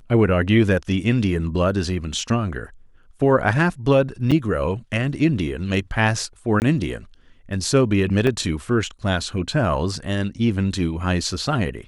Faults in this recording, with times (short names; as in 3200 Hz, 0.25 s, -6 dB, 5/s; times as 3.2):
4.31–4.32 gap 6.6 ms
6.6–6.62 gap 19 ms
8.27 gap 2 ms